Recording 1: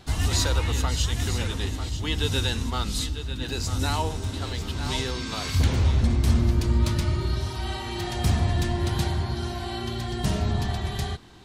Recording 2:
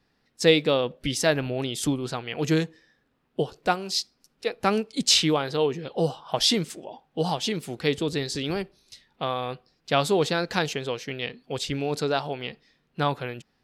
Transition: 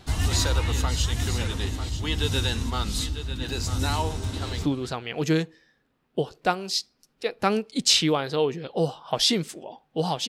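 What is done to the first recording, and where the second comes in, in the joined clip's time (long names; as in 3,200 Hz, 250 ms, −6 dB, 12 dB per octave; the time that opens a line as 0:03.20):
recording 1
0:04.05–0:04.65: delay throw 300 ms, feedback 20%, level −16.5 dB
0:04.65: continue with recording 2 from 0:01.86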